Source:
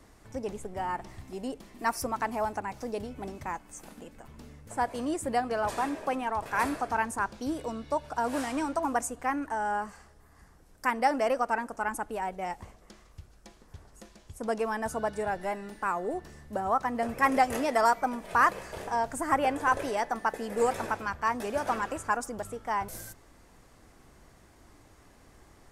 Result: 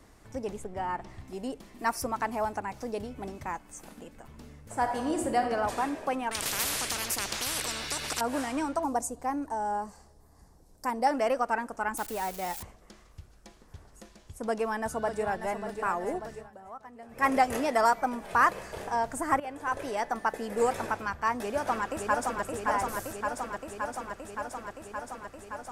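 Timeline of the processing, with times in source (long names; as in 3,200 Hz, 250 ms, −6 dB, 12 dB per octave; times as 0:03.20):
0:00.64–0:01.28: high-shelf EQ 7,300 Hz −10 dB
0:04.62–0:05.49: thrown reverb, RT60 1.3 s, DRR 3.5 dB
0:06.31–0:08.21: every bin compressed towards the loudest bin 10 to 1
0:08.84–0:11.07: flat-topped bell 2,000 Hz −10 dB
0:11.97–0:12.63: spike at every zero crossing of −29 dBFS
0:14.43–0:15.59: delay throw 590 ms, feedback 70%, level −9 dB
0:16.34–0:17.27: duck −17.5 dB, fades 0.17 s
0:19.40–0:20.11: fade in, from −15 dB
0:21.39–0:22.43: delay throw 570 ms, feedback 80%, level −3 dB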